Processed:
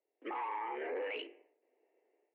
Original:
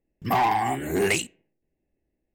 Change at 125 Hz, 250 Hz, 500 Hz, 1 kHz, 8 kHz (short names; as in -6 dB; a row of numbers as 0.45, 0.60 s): under -40 dB, -20.0 dB, -12.5 dB, -16.0 dB, under -40 dB